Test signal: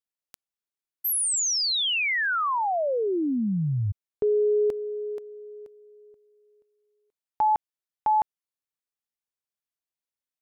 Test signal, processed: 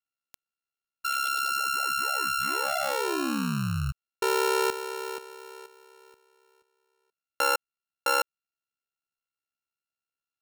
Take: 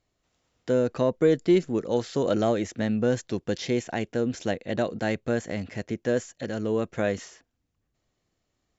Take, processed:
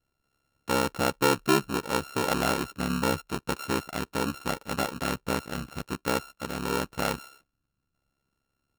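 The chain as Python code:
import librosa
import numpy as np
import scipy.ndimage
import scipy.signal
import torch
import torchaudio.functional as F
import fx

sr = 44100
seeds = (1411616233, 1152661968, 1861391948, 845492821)

y = np.r_[np.sort(x[:len(x) // 32 * 32].reshape(-1, 32), axis=1).ravel(), x[len(x) // 32 * 32:]]
y = y * np.sin(2.0 * np.pi * 34.0 * np.arange(len(y)) / sr)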